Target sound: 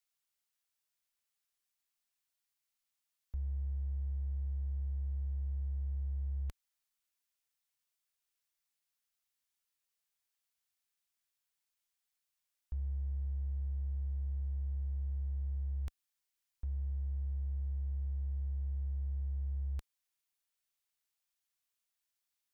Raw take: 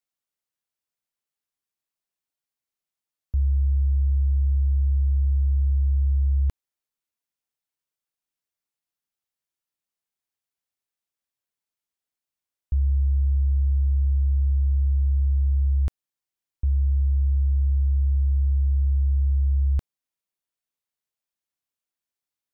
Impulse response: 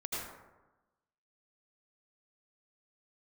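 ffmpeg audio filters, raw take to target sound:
-filter_complex "[0:a]asplit=2[a][b];[b]asoftclip=type=hard:threshold=-32.5dB,volume=-7dB[c];[a][c]amix=inputs=2:normalize=0,alimiter=level_in=3dB:limit=-24dB:level=0:latency=1:release=30,volume=-3dB,equalizer=f=240:w=0.31:g=-12.5"

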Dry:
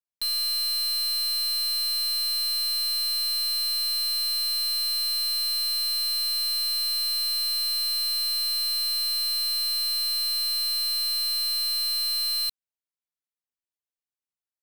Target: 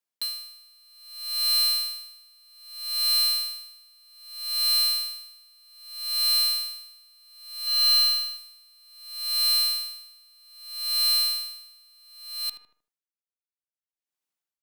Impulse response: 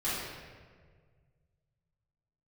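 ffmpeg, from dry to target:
-filter_complex "[0:a]highpass=180,asoftclip=type=hard:threshold=-26dB,asettb=1/sr,asplit=3[a][b][c];[a]atrim=end=7.654[d];[b]atrim=start=7.65:end=8.37,asetpts=PTS-STARTPTS,afade=t=in:d=0.004:c=qsin,afade=t=out:st=0.716:d=0.004:c=qsin,asplit=2[e][f];[f]adelay=19,volume=-3dB[g];[e][g]amix=inputs=2:normalize=0,atrim=end_sample=31752[h];[c]atrim=start=8.366[i];[d][h]acrossfade=d=0.004:c1=hsin:c2=qsin[j];[j][i]acrossfade=d=0.004:c1=qsin:c2=hsin,asplit=2[k][l];[l]adelay=77,lowpass=f=1.8k:p=1,volume=-10.5dB,asplit=2[m][n];[n]adelay=77,lowpass=f=1.8k:p=1,volume=0.45,asplit=2[o][p];[p]adelay=77,lowpass=f=1.8k:p=1,volume=0.45,asplit=2[q][r];[r]adelay=77,lowpass=f=1.8k:p=1,volume=0.45,asplit=2[s][t];[t]adelay=77,lowpass=f=1.8k:p=1,volume=0.45[u];[k][m][o][q][s][u]amix=inputs=6:normalize=0,aeval=exprs='val(0)*pow(10,-35*(0.5-0.5*cos(2*PI*0.63*n/s))/20)':c=same,volume=6dB"

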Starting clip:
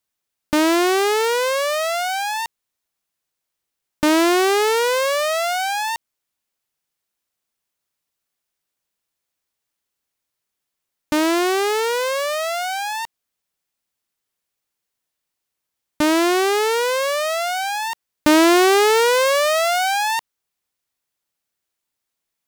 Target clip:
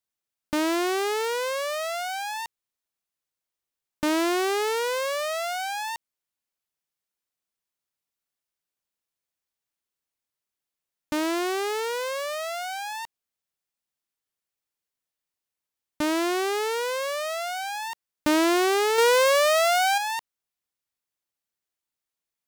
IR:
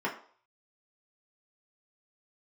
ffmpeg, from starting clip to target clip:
-filter_complex "[0:a]asettb=1/sr,asplit=3[a][b][c];[a]atrim=end=18.984[d];[b]atrim=start=18.98:end=19.98,asetpts=PTS-STARTPTS,afade=t=in:d=0.004:c=qsin,afade=t=out:st=0.996:d=0.004:c=qsin,acontrast=54[e];[c]atrim=start=19.976[f];[d][e]acrossfade=d=0.004:c1=hsin:c2=qsin[g];[g][f]acrossfade=d=0.004:c1=qsin:c2=hsin,volume=-8dB"

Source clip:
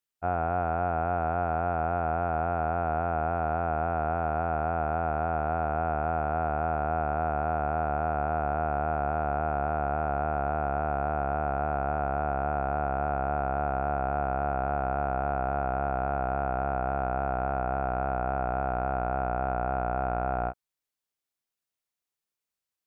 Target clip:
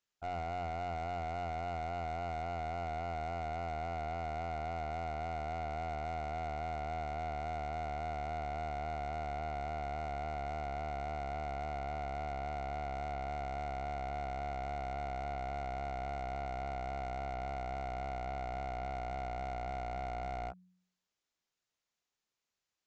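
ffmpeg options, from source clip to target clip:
-af "bandreject=f=91.2:t=h:w=4,bandreject=f=182.4:t=h:w=4,aresample=16000,volume=27dB,asoftclip=hard,volume=-27dB,aresample=44100,alimiter=level_in=13dB:limit=-24dB:level=0:latency=1:release=320,volume=-13dB,volume=3dB"

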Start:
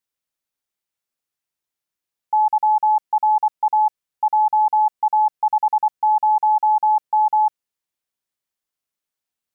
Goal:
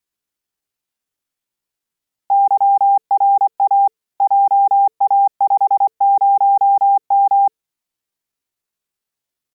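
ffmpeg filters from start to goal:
-af "afreqshift=-310,asetrate=64194,aresample=44100,atempo=0.686977,volume=4dB"

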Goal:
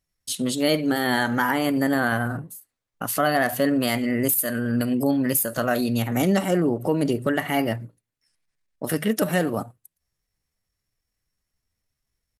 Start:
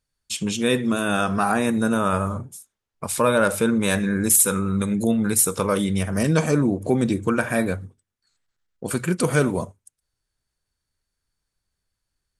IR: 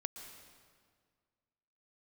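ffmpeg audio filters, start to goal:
-af "alimiter=limit=-10dB:level=0:latency=1:release=327,asetrate=53981,aresample=44100,atempo=0.816958"

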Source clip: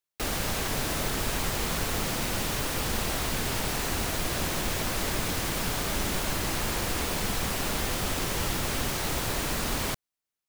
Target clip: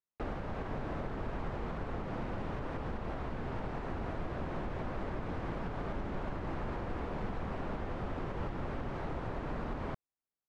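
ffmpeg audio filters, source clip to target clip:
-af "lowpass=1.2k,alimiter=level_in=0.5dB:limit=-24dB:level=0:latency=1:release=167,volume=-0.5dB,volume=-3.5dB"

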